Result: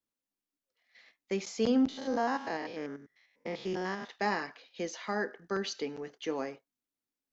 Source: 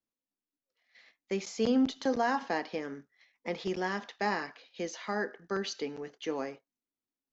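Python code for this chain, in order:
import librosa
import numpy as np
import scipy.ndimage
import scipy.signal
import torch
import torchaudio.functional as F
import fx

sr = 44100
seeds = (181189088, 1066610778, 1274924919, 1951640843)

y = fx.spec_steps(x, sr, hold_ms=100, at=(1.88, 4.1))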